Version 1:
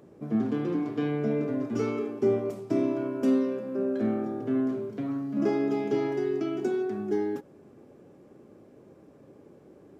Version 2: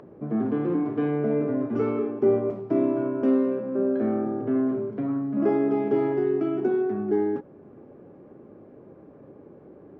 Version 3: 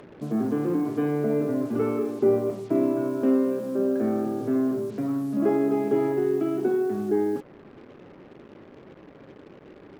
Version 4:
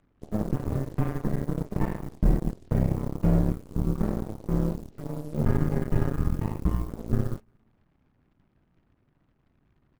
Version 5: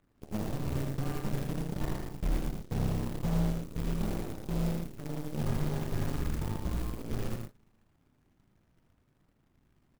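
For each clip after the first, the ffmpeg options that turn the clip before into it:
ffmpeg -i in.wav -filter_complex "[0:a]lowpass=1600,acrossover=split=260[link_01][link_02];[link_01]alimiter=level_in=7.5dB:limit=-24dB:level=0:latency=1,volume=-7.5dB[link_03];[link_02]acompressor=mode=upward:threshold=-51dB:ratio=2.5[link_04];[link_03][link_04]amix=inputs=2:normalize=0,volume=4.5dB" out.wav
ffmpeg -i in.wav -af "acrusher=bits=7:mix=0:aa=0.5" out.wav
ffmpeg -i in.wav -af "afreqshift=-430,aecho=1:1:197|394|591:0.119|0.0475|0.019,aeval=exprs='0.282*(cos(1*acos(clip(val(0)/0.282,-1,1)))-cos(1*PI/2))+0.02*(cos(6*acos(clip(val(0)/0.282,-1,1)))-cos(6*PI/2))+0.0447*(cos(7*acos(clip(val(0)/0.282,-1,1)))-cos(7*PI/2))':channel_layout=same" out.wav
ffmpeg -i in.wav -af "asoftclip=type=tanh:threshold=-21dB,acrusher=bits=3:mode=log:mix=0:aa=0.000001,aecho=1:1:79|115:0.562|0.447,volume=-4dB" out.wav

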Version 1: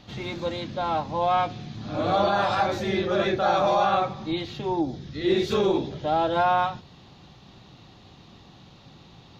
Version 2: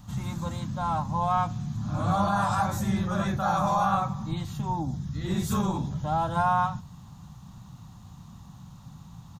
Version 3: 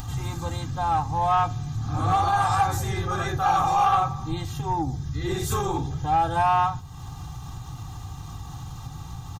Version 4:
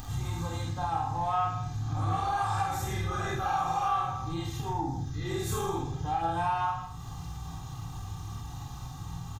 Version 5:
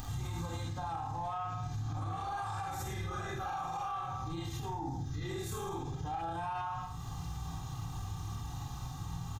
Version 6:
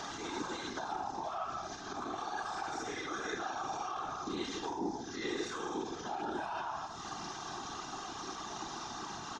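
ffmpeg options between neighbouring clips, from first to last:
ffmpeg -i in.wav -af "firequalizer=gain_entry='entry(180,0);entry(370,-23);entry(980,-4);entry(2200,-18);entry(4400,-15);entry(7900,9)':delay=0.05:min_phase=1,volume=6.5dB" out.wav
ffmpeg -i in.wav -af "aecho=1:1:2.5:0.94,acompressor=mode=upward:threshold=-30dB:ratio=2.5,asoftclip=type=tanh:threshold=-15dB,volume=2.5dB" out.wav
ffmpeg -i in.wav -filter_complex "[0:a]asplit=2[link_01][link_02];[link_02]adelay=48,volume=-3.5dB[link_03];[link_01][link_03]amix=inputs=2:normalize=0,aecho=1:1:30|66|109.2|161|223.2:0.631|0.398|0.251|0.158|0.1,acompressor=threshold=-24dB:ratio=2,volume=-6dB" out.wav
ffmpeg -i in.wav -af "alimiter=level_in=5.5dB:limit=-24dB:level=0:latency=1:release=63,volume=-5.5dB,volume=-1dB" out.wav
ffmpeg -i in.wav -filter_complex "[0:a]acrossover=split=280|570|3700[link_01][link_02][link_03][link_04];[link_01]acompressor=threshold=-51dB:ratio=4[link_05];[link_02]acompressor=threshold=-55dB:ratio=4[link_06];[link_03]acompressor=threshold=-50dB:ratio=4[link_07];[link_04]acompressor=threshold=-54dB:ratio=4[link_08];[link_05][link_06][link_07][link_08]amix=inputs=4:normalize=0,highpass=frequency=180:width=0.5412,highpass=frequency=180:width=1.3066,equalizer=frequency=190:width_type=q:width=4:gain=-8,equalizer=frequency=340:width_type=q:width=4:gain=9,equalizer=frequency=490:width_type=q:width=4:gain=-6,equalizer=frequency=1500:width_type=q:width=4:gain=7,equalizer=frequency=5600:width_type=q:width=4:gain=6,lowpass=frequency=6200:width=0.5412,lowpass=frequency=6200:width=1.3066,afftfilt=real='hypot(re,im)*cos(2*PI*random(0))':imag='hypot(re,im)*sin(2*PI*random(1))':win_size=512:overlap=0.75,volume=13.5dB" out.wav

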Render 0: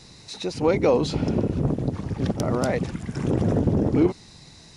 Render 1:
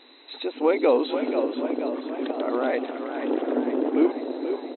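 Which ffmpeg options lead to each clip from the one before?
ffmpeg -i in.wav -filter_complex "[0:a]asplit=8[link_01][link_02][link_03][link_04][link_05][link_06][link_07][link_08];[link_02]adelay=483,afreqshift=54,volume=-8.5dB[link_09];[link_03]adelay=966,afreqshift=108,volume=-13.2dB[link_10];[link_04]adelay=1449,afreqshift=162,volume=-18dB[link_11];[link_05]adelay=1932,afreqshift=216,volume=-22.7dB[link_12];[link_06]adelay=2415,afreqshift=270,volume=-27.4dB[link_13];[link_07]adelay=2898,afreqshift=324,volume=-32.2dB[link_14];[link_08]adelay=3381,afreqshift=378,volume=-36.9dB[link_15];[link_01][link_09][link_10][link_11][link_12][link_13][link_14][link_15]amix=inputs=8:normalize=0,afftfilt=real='re*between(b*sr/4096,240,4100)':imag='im*between(b*sr/4096,240,4100)':win_size=4096:overlap=0.75" out.wav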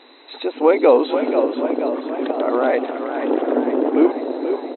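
ffmpeg -i in.wav -af "equalizer=frequency=780:width=0.34:gain=8" out.wav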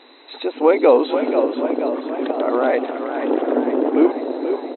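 ffmpeg -i in.wav -af anull out.wav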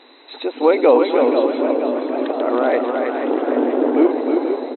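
ffmpeg -i in.wav -af "aecho=1:1:318|432:0.596|0.126" out.wav

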